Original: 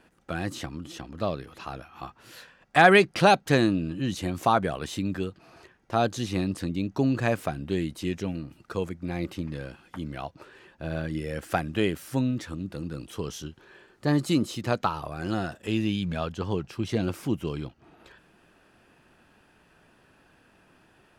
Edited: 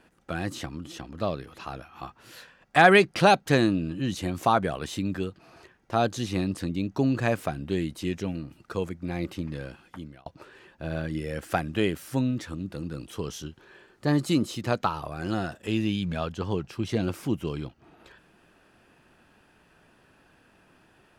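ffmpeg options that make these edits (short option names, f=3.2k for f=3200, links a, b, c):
-filter_complex "[0:a]asplit=2[a][b];[a]atrim=end=10.26,asetpts=PTS-STARTPTS,afade=t=out:st=9.82:d=0.44[c];[b]atrim=start=10.26,asetpts=PTS-STARTPTS,afade=t=in:d=0.004:c=hsin[d];[c][d]concat=n=2:v=0:a=1"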